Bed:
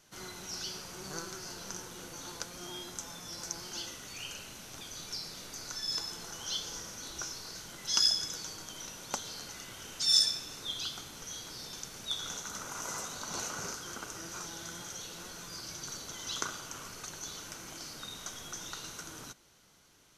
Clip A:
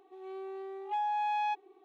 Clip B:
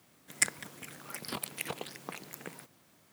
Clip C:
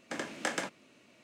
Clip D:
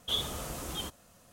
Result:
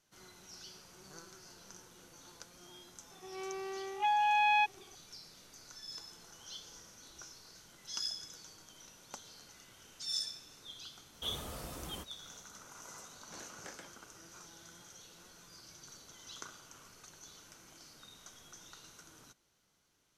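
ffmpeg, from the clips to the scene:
ffmpeg -i bed.wav -i cue0.wav -i cue1.wav -i cue2.wav -i cue3.wav -filter_complex "[0:a]volume=-12dB[link_01];[1:a]equalizer=frequency=2600:width_type=o:width=2.2:gain=14[link_02];[4:a]equalizer=frequency=5800:width_type=o:width=1.2:gain=-5[link_03];[link_02]atrim=end=1.84,asetpts=PTS-STARTPTS,volume=-2dB,afade=type=in:duration=0.004:curve=hsin,afade=type=out:start_time=1.836:duration=0.004:curve=hsin,adelay=3110[link_04];[link_03]atrim=end=1.32,asetpts=PTS-STARTPTS,volume=-5.5dB,afade=type=in:duration=0.004:curve=hsin,afade=type=out:start_time=1.316:duration=0.004:curve=hsin,adelay=491274S[link_05];[3:a]atrim=end=1.23,asetpts=PTS-STARTPTS,volume=-18dB,afade=type=in:duration=0.004:curve=hsin,afade=type=out:start_time=1.226:duration=0.004:curve=hsin,adelay=13210[link_06];[link_01][link_04][link_05][link_06]amix=inputs=4:normalize=0" out.wav

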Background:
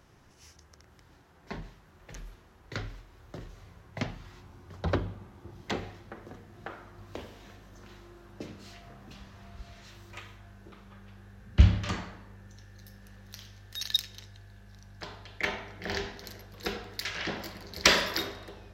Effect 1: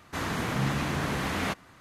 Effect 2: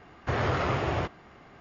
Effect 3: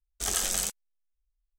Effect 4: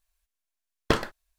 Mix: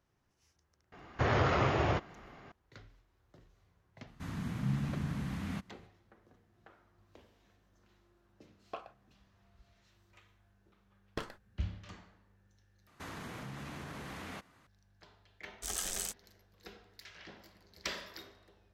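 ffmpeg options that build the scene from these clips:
ffmpeg -i bed.wav -i cue0.wav -i cue1.wav -i cue2.wav -i cue3.wav -filter_complex "[1:a]asplit=2[link_01][link_02];[4:a]asplit=2[link_03][link_04];[0:a]volume=-18dB[link_05];[link_01]lowshelf=frequency=290:width_type=q:width=1.5:gain=10.5[link_06];[link_03]asplit=3[link_07][link_08][link_09];[link_07]bandpass=frequency=730:width_type=q:width=8,volume=0dB[link_10];[link_08]bandpass=frequency=1090:width_type=q:width=8,volume=-6dB[link_11];[link_09]bandpass=frequency=2440:width_type=q:width=8,volume=-9dB[link_12];[link_10][link_11][link_12]amix=inputs=3:normalize=0[link_13];[link_02]acompressor=threshold=-30dB:ratio=6:attack=3.2:release=140:knee=1:detection=peak[link_14];[link_05]asplit=2[link_15][link_16];[link_15]atrim=end=12.874[link_17];[link_14]atrim=end=1.8,asetpts=PTS-STARTPTS,volume=-10.5dB[link_18];[link_16]atrim=start=14.666[link_19];[2:a]atrim=end=1.6,asetpts=PTS-STARTPTS,volume=-1.5dB,afade=type=in:duration=0.004:curve=hsin,afade=type=out:start_time=1.596:duration=0.004:curve=hsin,adelay=920[link_20];[link_06]atrim=end=1.8,asetpts=PTS-STARTPTS,volume=-16dB,afade=type=in:duration=0.004:curve=hsin,afade=type=out:start_time=1.796:duration=0.004:curve=hsin,adelay=4070[link_21];[link_13]atrim=end=1.38,asetpts=PTS-STARTPTS,volume=-7.5dB,afade=type=in:duration=0.004:curve=hsin,afade=type=out:start_time=1.376:duration=0.004:curve=hsin,adelay=7830[link_22];[link_04]atrim=end=1.38,asetpts=PTS-STARTPTS,volume=-16.5dB,afade=type=in:duration=0.004:curve=hsin,afade=type=out:start_time=1.376:duration=0.004:curve=hsin,adelay=10270[link_23];[3:a]atrim=end=1.58,asetpts=PTS-STARTPTS,volume=-9dB,afade=type=in:duration=0.004:curve=hsin,afade=type=out:start_time=1.576:duration=0.004:curve=hsin,adelay=15420[link_24];[link_17][link_18]acrossfade=duration=0.004:curve1=hsin:curve2=hsin[link_25];[link_25][link_19]acrossfade=duration=0.004:curve1=hsin:curve2=hsin[link_26];[link_26][link_20][link_21][link_22][link_23][link_24]amix=inputs=6:normalize=0" out.wav

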